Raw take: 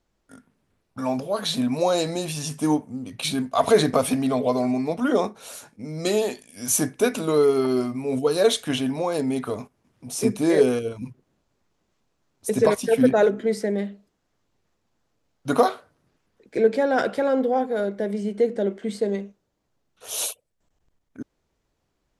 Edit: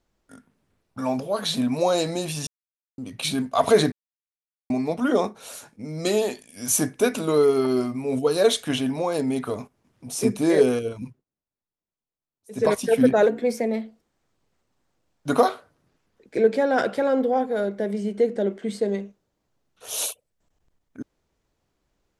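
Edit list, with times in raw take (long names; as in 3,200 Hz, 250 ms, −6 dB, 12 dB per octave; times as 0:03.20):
0:02.47–0:02.98: silence
0:03.92–0:04.70: silence
0:11.01–0:12.72: duck −23.5 dB, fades 0.23 s
0:13.27–0:15.48: play speed 110%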